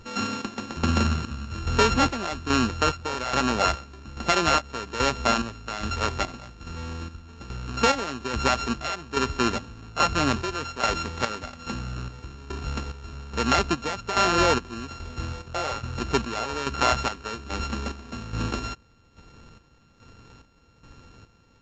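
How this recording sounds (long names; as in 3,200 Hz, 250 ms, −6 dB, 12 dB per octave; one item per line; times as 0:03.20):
a buzz of ramps at a fixed pitch in blocks of 32 samples
chopped level 1.2 Hz, depth 65%, duty 50%
Ogg Vorbis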